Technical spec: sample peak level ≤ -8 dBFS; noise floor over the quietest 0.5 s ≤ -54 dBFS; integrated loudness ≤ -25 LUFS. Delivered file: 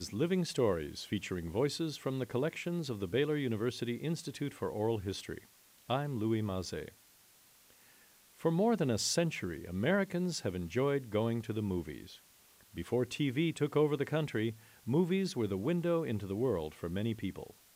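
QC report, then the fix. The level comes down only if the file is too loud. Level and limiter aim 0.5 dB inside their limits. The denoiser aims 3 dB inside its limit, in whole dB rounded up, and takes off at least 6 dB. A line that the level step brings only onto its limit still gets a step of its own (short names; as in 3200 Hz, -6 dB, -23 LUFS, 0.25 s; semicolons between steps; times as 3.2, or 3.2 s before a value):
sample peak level -18.0 dBFS: OK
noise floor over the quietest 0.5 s -63 dBFS: OK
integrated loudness -34.5 LUFS: OK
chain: none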